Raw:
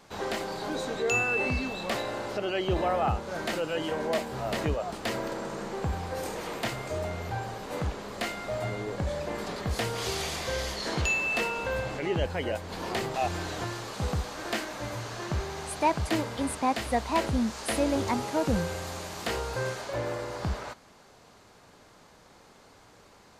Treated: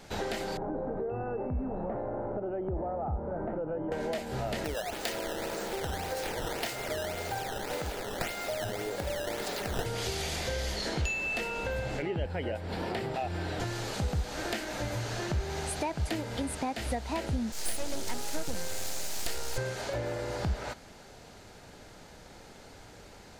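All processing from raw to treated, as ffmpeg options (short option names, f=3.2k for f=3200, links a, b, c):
-filter_complex "[0:a]asettb=1/sr,asplit=3[a][b][c];[a]atrim=end=0.574[d];[b]atrim=start=0.57:end=3.92,asetpts=PTS-STARTPTS,afade=t=in:d=0.004:c=qsin,afade=t=out:st=3.346:d=0.004:c=qsin,lowpass=f=1.1k:w=0.5412,lowpass=f=1.1k:w=1.3066,acompressor=threshold=-34dB:ratio=2:attack=3.2:release=140:knee=1:detection=peak[e];[c]atrim=start=3.916[f];[d][e]acrossfade=d=0.004:c1=hsin:c2=qsin[g];[g][f]acrossfade=d=0.004:c1=qsin:c2=hsin,asettb=1/sr,asplit=3[h][i][j];[h]atrim=end=4.644[k];[i]atrim=start=4.64:end=9.86,asetpts=PTS-STARTPTS,afade=t=in:d=0.004:c=qsin,afade=t=out:st=5.216:d=0.004:c=qsin,bass=f=250:g=-13,treble=f=4k:g=6,acrusher=samples=11:mix=1:aa=0.000001:lfo=1:lforange=17.6:lforate=1.8[l];[j]atrim=start=9.856[m];[k][l]acrossfade=d=0.004:c1=hsin:c2=qsin[n];[n][m]acrossfade=d=0.004:c1=qsin:c2=hsin,asettb=1/sr,asplit=3[o][p][q];[o]atrim=end=12.024[r];[p]atrim=start=12.02:end=13.6,asetpts=PTS-STARTPTS,afade=t=in:d=0.004:c=qsin,afade=t=out:st=1.576:d=0.004:c=qsin,highpass=54,highshelf=f=4.4k:g=-9.5,bandreject=f=6.4k:w=5.8[s];[q]atrim=start=13.596[t];[r][s]acrossfade=d=0.004:c1=hsin:c2=qsin[u];[u][t]acrossfade=d=0.004:c1=qsin:c2=hsin,asettb=1/sr,asplit=3[v][w][x];[v]atrim=end=17.524[y];[w]atrim=start=17.52:end=19.58,asetpts=PTS-STARTPTS,afade=t=in:d=0.004:c=qsin,afade=t=out:st=2.056:d=0.004:c=qsin,bass=f=250:g=-10,treble=f=4k:g=11,aeval=exprs='max(val(0),0)':c=same[z];[x]atrim=start=19.576[aa];[y][z]acrossfade=d=0.004:c1=hsin:c2=qsin[ab];[ab][aa]acrossfade=d=0.004:c1=qsin:c2=hsin,equalizer=f=1.1k:w=5.9:g=-11,acompressor=threshold=-36dB:ratio=5,lowshelf=f=63:g=10.5,volume=4.5dB"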